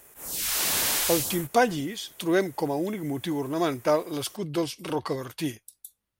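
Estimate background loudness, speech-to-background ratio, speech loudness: -25.0 LUFS, -3.0 dB, -28.0 LUFS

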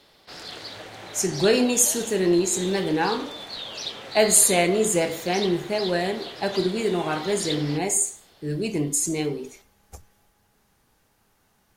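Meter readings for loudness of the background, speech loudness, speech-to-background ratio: -34.5 LUFS, -22.5 LUFS, 12.0 dB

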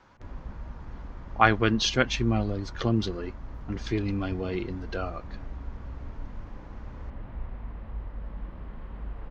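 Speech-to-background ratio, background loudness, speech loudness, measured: 14.5 dB, -42.0 LUFS, -27.5 LUFS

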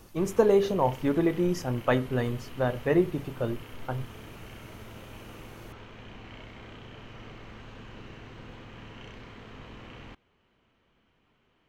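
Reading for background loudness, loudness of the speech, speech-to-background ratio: -46.5 LUFS, -27.5 LUFS, 19.0 dB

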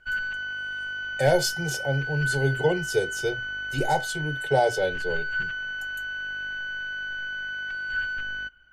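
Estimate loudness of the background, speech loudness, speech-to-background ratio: -30.5 LUFS, -26.5 LUFS, 4.0 dB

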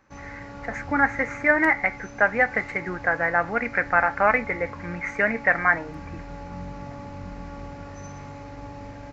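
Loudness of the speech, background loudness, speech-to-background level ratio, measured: -22.5 LUFS, -39.5 LUFS, 17.0 dB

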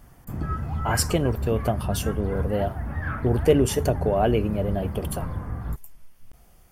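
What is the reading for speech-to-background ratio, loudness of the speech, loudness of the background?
5.5 dB, -25.5 LUFS, -31.0 LUFS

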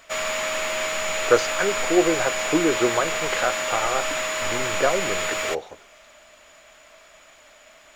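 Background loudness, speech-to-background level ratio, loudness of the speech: -25.0 LUFS, 0.0 dB, -25.0 LUFS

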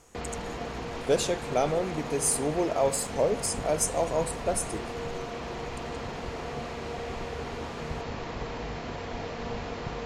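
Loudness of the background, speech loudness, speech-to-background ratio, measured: -36.0 LUFS, -28.5 LUFS, 7.5 dB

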